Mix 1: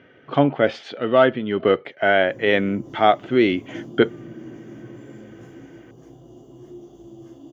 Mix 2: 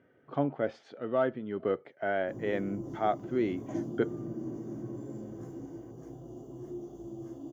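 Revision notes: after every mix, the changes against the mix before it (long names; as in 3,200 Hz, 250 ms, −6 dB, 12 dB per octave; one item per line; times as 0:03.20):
speech −12.0 dB
master: add parametric band 3,000 Hz −11.5 dB 1.4 octaves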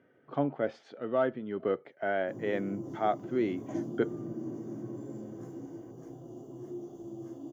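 master: add high-pass filter 110 Hz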